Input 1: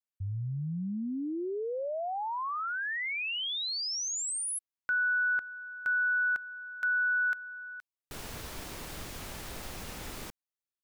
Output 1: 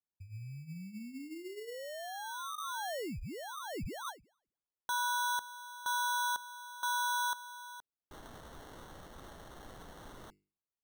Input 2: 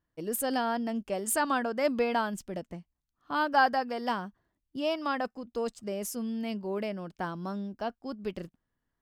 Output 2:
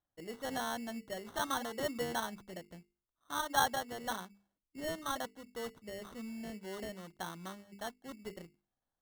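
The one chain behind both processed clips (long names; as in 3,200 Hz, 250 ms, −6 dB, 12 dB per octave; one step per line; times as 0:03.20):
Chebyshev low-pass with heavy ripple 6,500 Hz, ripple 6 dB
mains-hum notches 50/100/150/200/250/300/350/400/450 Hz
decimation without filtering 18×
level −4 dB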